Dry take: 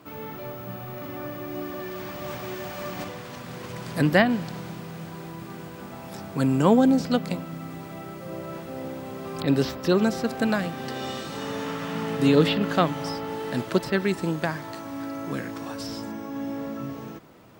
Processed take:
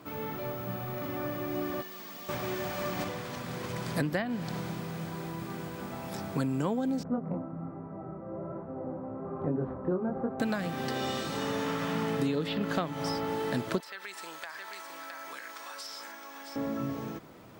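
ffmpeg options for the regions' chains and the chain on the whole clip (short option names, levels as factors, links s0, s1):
-filter_complex "[0:a]asettb=1/sr,asplit=3[s0][s1][s2];[s0]atrim=end=1.814[s3];[s1]atrim=start=1.81:end=2.29,asetpts=PTS-STARTPTS,afade=t=in:d=0.004:c=qsin,afade=t=out:st=0.476:d=0.004:c=qsin,highpass=200,acrossover=split=820|3100[s4][s5][s6];[s4]acompressor=threshold=0.00282:ratio=4[s7];[s5]acompressor=threshold=0.00141:ratio=4[s8];[s6]acompressor=threshold=0.00398:ratio=4[s9];[s7][s8][s9]amix=inputs=3:normalize=0,aecho=1:1:4.4:0.98,atrim=end_sample=21168[s10];[s2]atrim=start=2.286[s11];[s3][s10]acrossfade=d=0.004:c1=hsin:c2=qsin[s12];[s12][s11]acrossfade=d=0.004:c1=qsin:c2=hsin,asettb=1/sr,asplit=3[s13][s14][s15];[s13]atrim=end=7.034[s16];[s14]atrim=start=7.03:end=10.4,asetpts=PTS-STARTPTS,afade=t=in:d=0.004:c=qsin,afade=t=out:st=3.366:d=0.004:c=qsin,lowpass=f=1200:w=0.5412,lowpass=f=1200:w=1.3066,flanger=delay=19.5:depth=7.7:speed=1.2[s17];[s15]atrim=start=10.396[s18];[s16][s17]acrossfade=d=0.004:c1=hsin:c2=qsin[s19];[s19][s18]acrossfade=d=0.004:c1=qsin:c2=hsin,asettb=1/sr,asplit=3[s20][s21][s22];[s20]atrim=end=13.804[s23];[s21]atrim=start=13.8:end=16.56,asetpts=PTS-STARTPTS,afade=t=in:d=0.004:c=qsin,afade=t=out:st=2.756:d=0.004:c=qsin,highpass=1100,aecho=1:1:664:0.299,atrim=end_sample=121716,acompressor=threshold=0.0126:ratio=4:attack=3.2:release=140:knee=1:detection=peak[s24];[s22]atrim=start=16.556[s25];[s23][s24]acrossfade=d=0.004:c1=hsin:c2=qsin[s26];[s26][s25]acrossfade=d=0.004:c1=qsin:c2=hsin,bandreject=f=2800:w=26,acompressor=threshold=0.0501:ratio=16"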